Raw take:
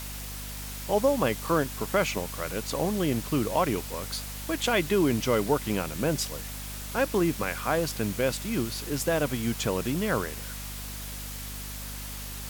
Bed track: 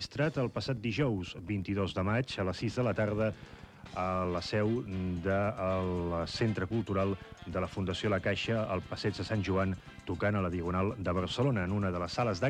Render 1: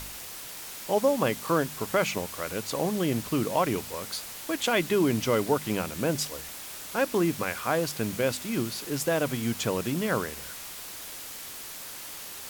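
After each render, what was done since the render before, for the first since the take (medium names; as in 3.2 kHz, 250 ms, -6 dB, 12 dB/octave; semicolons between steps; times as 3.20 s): de-hum 50 Hz, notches 5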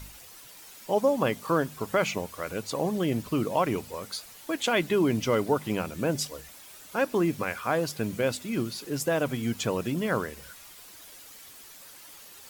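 noise reduction 10 dB, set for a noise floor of -41 dBFS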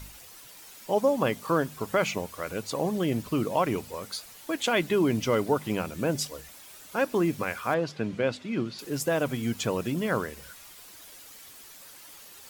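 7.74–8.79 s: band-pass 100–3900 Hz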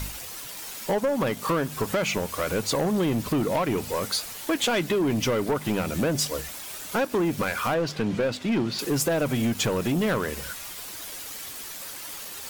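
compression, threshold -29 dBFS, peak gain reduction 10.5 dB; waveshaping leveller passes 3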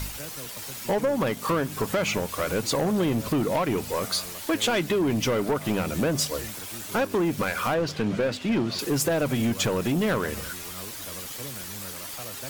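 add bed track -11.5 dB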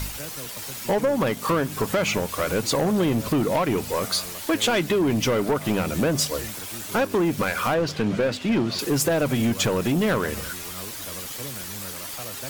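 trim +2.5 dB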